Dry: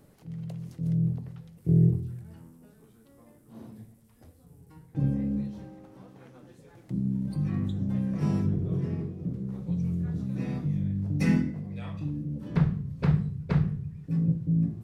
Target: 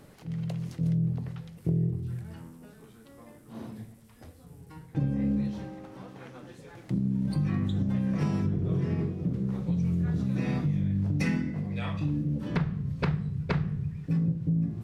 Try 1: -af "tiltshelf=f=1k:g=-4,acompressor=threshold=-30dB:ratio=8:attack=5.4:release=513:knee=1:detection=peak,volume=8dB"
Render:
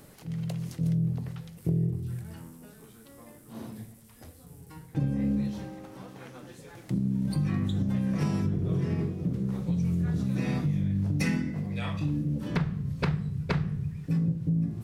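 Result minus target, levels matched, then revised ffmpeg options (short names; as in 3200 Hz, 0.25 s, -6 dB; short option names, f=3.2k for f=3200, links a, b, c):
4000 Hz band +2.5 dB
-af "tiltshelf=f=1k:g=-4,acompressor=threshold=-30dB:ratio=8:attack=5.4:release=513:knee=1:detection=peak,lowpass=f=4k:p=1,volume=8dB"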